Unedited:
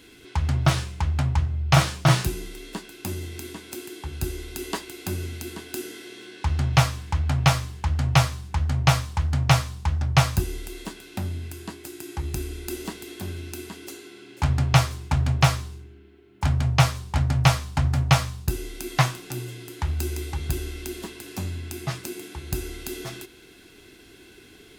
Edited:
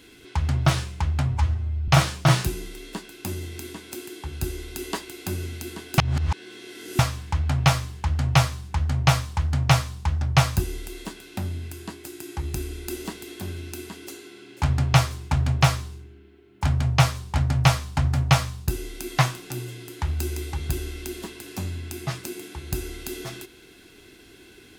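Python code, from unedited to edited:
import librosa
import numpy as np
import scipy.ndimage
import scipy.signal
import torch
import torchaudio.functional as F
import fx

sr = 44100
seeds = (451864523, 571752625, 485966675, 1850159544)

y = fx.edit(x, sr, fx.stretch_span(start_s=1.28, length_s=0.4, factor=1.5),
    fx.reverse_span(start_s=5.78, length_s=1.01), tone=tone)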